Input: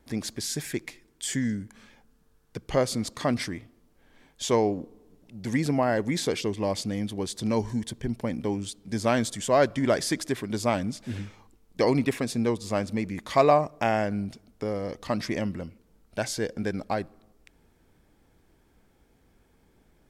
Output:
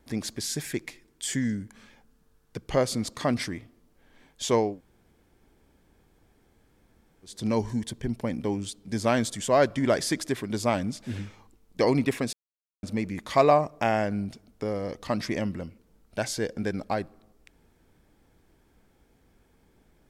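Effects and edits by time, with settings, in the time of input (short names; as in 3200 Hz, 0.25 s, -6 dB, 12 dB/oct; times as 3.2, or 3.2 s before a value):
4.7–7.34 room tone, crossfade 0.24 s
12.33–12.83 mute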